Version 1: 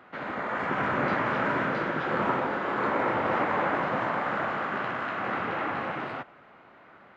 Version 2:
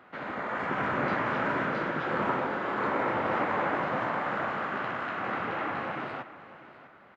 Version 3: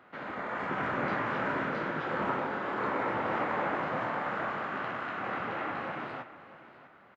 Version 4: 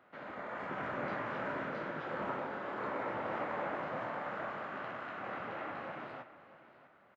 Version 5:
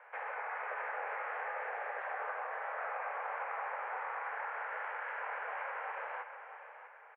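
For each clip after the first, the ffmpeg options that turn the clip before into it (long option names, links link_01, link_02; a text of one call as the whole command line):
ffmpeg -i in.wav -af "aecho=1:1:649:0.158,volume=-2dB" out.wav
ffmpeg -i in.wav -filter_complex "[0:a]asplit=2[link_01][link_02];[link_02]adelay=26,volume=-10.5dB[link_03];[link_01][link_03]amix=inputs=2:normalize=0,volume=-3dB" out.wav
ffmpeg -i in.wav -af "equalizer=frequency=600:width_type=o:width=0.39:gain=4.5,volume=-7.5dB" out.wav
ffmpeg -i in.wav -af "highpass=frequency=230:width_type=q:width=0.5412,highpass=frequency=230:width_type=q:width=1.307,lowpass=frequency=2300:width_type=q:width=0.5176,lowpass=frequency=2300:width_type=q:width=0.7071,lowpass=frequency=2300:width_type=q:width=1.932,afreqshift=240,acompressor=threshold=-46dB:ratio=4,volume=8dB" out.wav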